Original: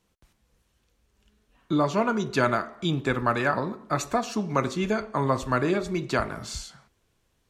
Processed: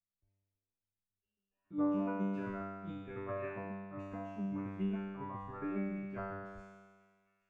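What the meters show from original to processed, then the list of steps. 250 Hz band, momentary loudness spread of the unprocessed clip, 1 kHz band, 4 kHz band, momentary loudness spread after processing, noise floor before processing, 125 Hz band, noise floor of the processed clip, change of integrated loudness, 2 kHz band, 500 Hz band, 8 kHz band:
-9.0 dB, 6 LU, -18.0 dB, under -25 dB, 10 LU, -71 dBFS, -13.5 dB, under -85 dBFS, -13.0 dB, -19.5 dB, -16.0 dB, under -35 dB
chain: resonant high shelf 3200 Hz -8.5 dB, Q 3; thin delay 0.434 s, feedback 76%, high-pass 2900 Hz, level -21 dB; spectral noise reduction 19 dB; tilt -3.5 dB/oct; chopper 7.3 Hz, depth 65%, duty 25%; resonator 98 Hz, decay 1.6 s, harmonics all, mix 100%; gain +2.5 dB

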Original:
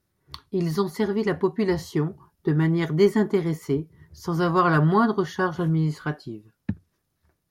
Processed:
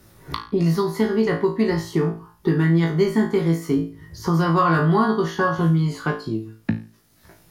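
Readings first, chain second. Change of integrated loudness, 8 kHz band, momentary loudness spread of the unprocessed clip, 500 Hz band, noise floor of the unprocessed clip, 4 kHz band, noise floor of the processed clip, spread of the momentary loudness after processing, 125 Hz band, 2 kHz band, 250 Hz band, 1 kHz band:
+2.5 dB, +3.5 dB, 15 LU, +2.0 dB, -76 dBFS, +3.5 dB, -57 dBFS, 10 LU, +4.0 dB, +3.0 dB, +3.5 dB, +3.0 dB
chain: flutter echo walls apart 3.1 m, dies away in 0.32 s; three-band squash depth 70%

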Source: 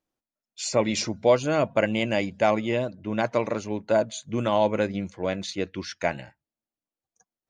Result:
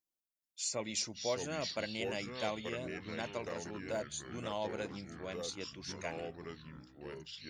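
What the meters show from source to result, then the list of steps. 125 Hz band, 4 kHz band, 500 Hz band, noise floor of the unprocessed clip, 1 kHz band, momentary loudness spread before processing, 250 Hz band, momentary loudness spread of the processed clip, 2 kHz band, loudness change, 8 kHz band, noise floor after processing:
-14.5 dB, -6.5 dB, -15.5 dB, under -85 dBFS, -15.5 dB, 8 LU, -15.5 dB, 12 LU, -11.5 dB, -14.0 dB, -5.0 dB, under -85 dBFS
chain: pre-emphasis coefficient 0.8; echoes that change speed 0.421 s, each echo -4 st, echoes 3, each echo -6 dB; gain -3.5 dB

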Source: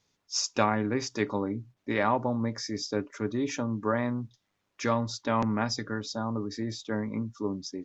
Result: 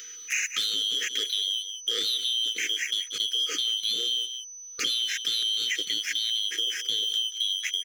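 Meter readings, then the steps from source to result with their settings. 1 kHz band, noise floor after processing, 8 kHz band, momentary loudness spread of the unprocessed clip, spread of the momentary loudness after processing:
-20.5 dB, -43 dBFS, n/a, 8 LU, 4 LU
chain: four-band scrambler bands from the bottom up 2413; bell 750 Hz +15 dB 0.68 oct; sample leveller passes 3; HPF 410 Hz 12 dB/oct; upward compressor, threshold -25 dBFS; brick-wall FIR band-stop 520–1200 Hz; requantised 12-bit, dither none; echo 0.182 s -16 dB; limiter -12.5 dBFS, peak gain reduction 7 dB; compressor, threshold -25 dBFS, peak gain reduction 9 dB; whine 6000 Hz -40 dBFS

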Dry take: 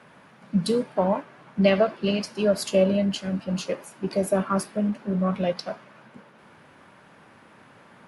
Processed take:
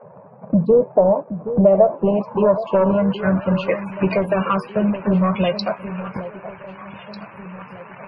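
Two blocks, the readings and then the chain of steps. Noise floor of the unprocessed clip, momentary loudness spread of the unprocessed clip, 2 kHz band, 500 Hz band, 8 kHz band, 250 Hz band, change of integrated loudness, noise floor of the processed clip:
-53 dBFS, 9 LU, +5.0 dB, +7.5 dB, under -20 dB, +6.0 dB, +6.5 dB, -43 dBFS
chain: sample leveller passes 2; fifteen-band EQ 250 Hz -8 dB, 1000 Hz +7 dB, 2500 Hz +6 dB; loudest bins only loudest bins 64; compressor 3:1, threshold -32 dBFS, peak gain reduction 16 dB; low-pass sweep 570 Hz -> 3700 Hz, 1.6–4.84; low shelf 420 Hz +7 dB; echo with dull and thin repeats by turns 0.773 s, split 860 Hz, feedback 63%, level -11.5 dB; gain +8 dB

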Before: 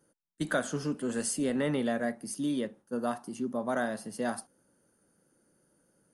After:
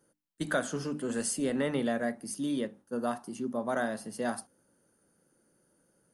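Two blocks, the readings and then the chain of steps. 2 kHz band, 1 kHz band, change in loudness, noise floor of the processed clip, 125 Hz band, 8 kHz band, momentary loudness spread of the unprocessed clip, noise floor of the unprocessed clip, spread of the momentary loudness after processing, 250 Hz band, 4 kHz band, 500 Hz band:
0.0 dB, 0.0 dB, -0.5 dB, -72 dBFS, -2.0 dB, 0.0 dB, 6 LU, -72 dBFS, 6 LU, -1.0 dB, 0.0 dB, 0.0 dB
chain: notches 50/100/150/200/250/300 Hz

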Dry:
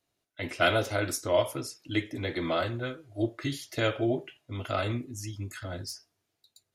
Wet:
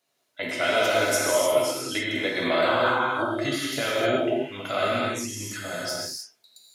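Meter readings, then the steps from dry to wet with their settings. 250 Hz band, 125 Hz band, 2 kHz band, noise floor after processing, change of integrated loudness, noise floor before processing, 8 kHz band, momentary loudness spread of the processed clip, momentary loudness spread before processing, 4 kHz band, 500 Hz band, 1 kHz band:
+3.0 dB, -4.0 dB, +7.5 dB, -72 dBFS, +6.5 dB, -82 dBFS, +10.0 dB, 10 LU, 12 LU, +7.5 dB, +6.5 dB, +8.0 dB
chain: HPF 230 Hz 12 dB/oct; bell 320 Hz -8.5 dB 0.42 oct; limiter -21 dBFS, peak gain reduction 9 dB; painted sound noise, 2.64–3.07, 720–1600 Hz -35 dBFS; non-linear reverb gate 0.33 s flat, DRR -4.5 dB; gain +4.5 dB

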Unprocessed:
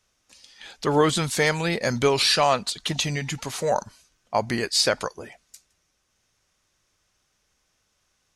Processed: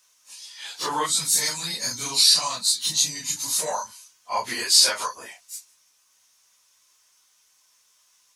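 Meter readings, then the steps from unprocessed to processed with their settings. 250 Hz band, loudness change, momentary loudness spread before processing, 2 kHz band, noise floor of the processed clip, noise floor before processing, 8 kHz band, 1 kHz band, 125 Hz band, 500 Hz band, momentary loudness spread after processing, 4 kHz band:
-13.5 dB, +2.5 dB, 10 LU, -5.0 dB, -63 dBFS, -72 dBFS, +9.5 dB, -3.0 dB, -15.5 dB, -12.0 dB, 22 LU, +5.0 dB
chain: phase scrambler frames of 0.1 s; bell 1000 Hz +10 dB 0.31 oct; spectral gain 1.06–3.59, 310–3600 Hz -11 dB; compressor 1.5:1, threshold -28 dBFS, peak gain reduction 6 dB; tilt +4.5 dB/oct; gain -1 dB

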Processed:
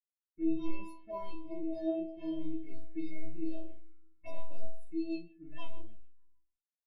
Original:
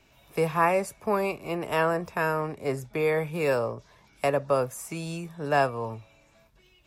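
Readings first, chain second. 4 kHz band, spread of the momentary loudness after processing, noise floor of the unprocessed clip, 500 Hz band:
-16.5 dB, 17 LU, -61 dBFS, -17.0 dB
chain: sample leveller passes 3; metallic resonator 320 Hz, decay 0.64 s, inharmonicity 0.008; spring tank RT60 2.2 s, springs 52/59 ms, chirp 30 ms, DRR 12.5 dB; dynamic EQ 930 Hz, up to +4 dB, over -44 dBFS, Q 0.73; early reflections 20 ms -16 dB, 40 ms -5.5 dB; crossover distortion -58.5 dBFS; rotary speaker horn 0.65 Hz, later 6.7 Hz, at 4.45; low-pass opened by the level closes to 1300 Hz, open at -32.5 dBFS; envelope phaser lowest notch 570 Hz, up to 1600 Hz, full sweep at -34.5 dBFS; EQ curve 160 Hz 0 dB, 870 Hz -17 dB, 11000 Hz -5 dB; spectral expander 1.5:1; gain +14.5 dB

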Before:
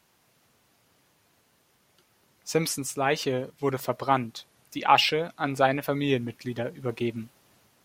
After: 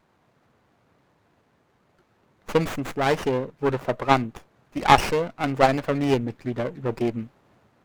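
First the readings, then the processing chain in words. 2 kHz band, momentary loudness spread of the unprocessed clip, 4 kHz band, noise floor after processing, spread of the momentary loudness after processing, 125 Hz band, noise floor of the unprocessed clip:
+2.0 dB, 17 LU, -3.0 dB, -66 dBFS, 11 LU, +4.5 dB, -67 dBFS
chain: Wiener smoothing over 9 samples; added harmonics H 8 -22 dB, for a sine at -4 dBFS; running maximum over 9 samples; gain +5 dB

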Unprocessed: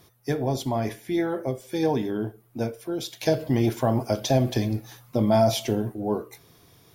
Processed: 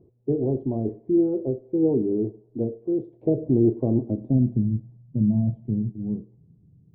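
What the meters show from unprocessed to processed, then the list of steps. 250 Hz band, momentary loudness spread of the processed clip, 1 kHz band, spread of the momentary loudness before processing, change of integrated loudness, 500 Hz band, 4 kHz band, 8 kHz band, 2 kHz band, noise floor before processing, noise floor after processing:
+3.5 dB, 9 LU, under -15 dB, 9 LU, +1.0 dB, -1.0 dB, under -40 dB, under -40 dB, under -40 dB, -57 dBFS, -57 dBFS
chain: bell 1600 Hz -9.5 dB 0.9 oct; low-pass sweep 390 Hz -> 180 Hz, 3.81–4.69; tape spacing loss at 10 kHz 37 dB; thinning echo 0.107 s, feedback 81%, high-pass 630 Hz, level -22 dB

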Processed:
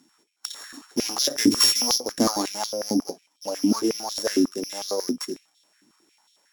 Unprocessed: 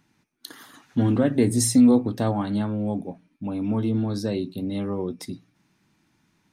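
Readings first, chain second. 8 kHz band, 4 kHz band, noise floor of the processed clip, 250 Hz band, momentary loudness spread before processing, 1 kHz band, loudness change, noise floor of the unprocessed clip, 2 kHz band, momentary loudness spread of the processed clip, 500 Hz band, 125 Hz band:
+6.0 dB, +15.0 dB, -69 dBFS, -4.0 dB, 20 LU, +2.5 dB, 0.0 dB, -69 dBFS, +4.5 dB, 18 LU, -1.0 dB, -15.0 dB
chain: sample sorter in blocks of 8 samples; bell 7400 Hz +14 dB 0.93 oct; stepped high-pass 11 Hz 270–3500 Hz

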